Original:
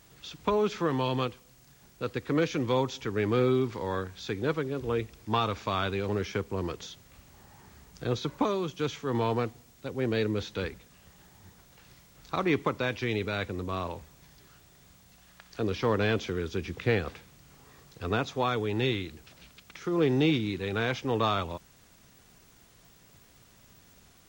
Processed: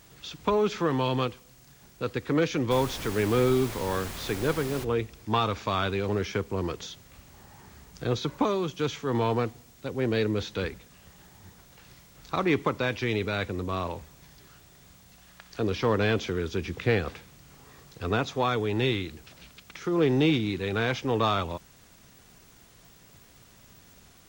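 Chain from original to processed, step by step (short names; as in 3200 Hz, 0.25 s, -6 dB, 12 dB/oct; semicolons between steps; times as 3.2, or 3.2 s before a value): in parallel at -11 dB: soft clip -30 dBFS, distortion -7 dB; 2.7–4.83 on the sum: added noise pink -39 dBFS; gain +1 dB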